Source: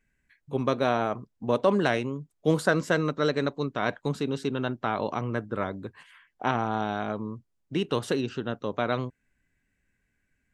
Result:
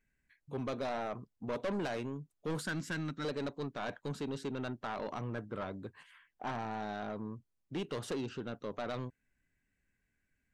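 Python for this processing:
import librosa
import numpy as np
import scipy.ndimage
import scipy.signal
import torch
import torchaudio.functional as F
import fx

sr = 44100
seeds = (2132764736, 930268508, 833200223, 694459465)

y = fx.band_shelf(x, sr, hz=670.0, db=-13.0, octaves=1.7, at=(2.61, 3.25))
y = 10.0 ** (-25.5 / 20.0) * np.tanh(y / 10.0 ** (-25.5 / 20.0))
y = y * 10.0 ** (-6.0 / 20.0)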